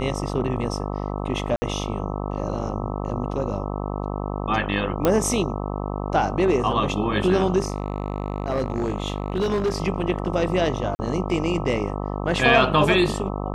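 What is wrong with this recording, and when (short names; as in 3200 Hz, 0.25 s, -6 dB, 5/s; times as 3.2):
buzz 50 Hz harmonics 26 -28 dBFS
1.56–1.62 gap 60 ms
5.05 pop -6 dBFS
7.6–9.78 clipped -18 dBFS
10.95–10.99 gap 40 ms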